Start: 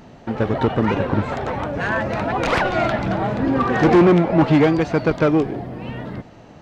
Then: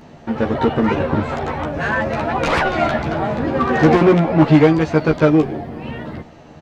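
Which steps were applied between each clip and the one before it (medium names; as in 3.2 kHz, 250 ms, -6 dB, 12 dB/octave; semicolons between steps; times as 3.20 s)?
doubling 13 ms -2.5 dB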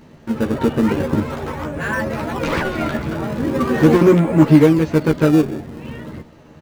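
peaking EQ 730 Hz -10.5 dB 0.27 oct; in parallel at -9 dB: decimation with a swept rate 24×, swing 160% 0.41 Hz; on the sum: dynamic bell 260 Hz, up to +4 dB, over -22 dBFS, Q 0.77; trim -4.5 dB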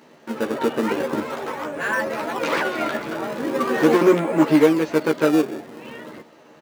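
high-pass 360 Hz 12 dB/octave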